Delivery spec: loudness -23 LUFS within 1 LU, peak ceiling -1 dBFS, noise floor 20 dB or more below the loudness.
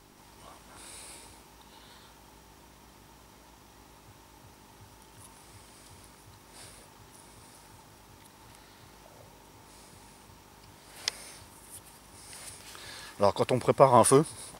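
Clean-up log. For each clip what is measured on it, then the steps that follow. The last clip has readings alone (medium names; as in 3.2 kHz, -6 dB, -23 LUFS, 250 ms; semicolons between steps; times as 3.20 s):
hum 50 Hz; highest harmonic 400 Hz; hum level -59 dBFS; loudness -25.0 LUFS; peak level -5.0 dBFS; loudness target -23.0 LUFS
-> de-hum 50 Hz, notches 8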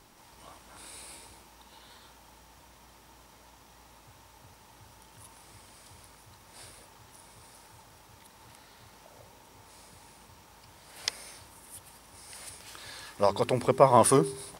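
hum not found; loudness -25.5 LUFS; peak level -5.0 dBFS; loudness target -23.0 LUFS
-> trim +2.5 dB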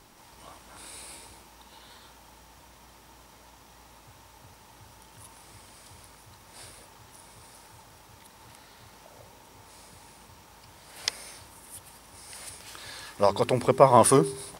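loudness -23.0 LUFS; peak level -2.5 dBFS; noise floor -54 dBFS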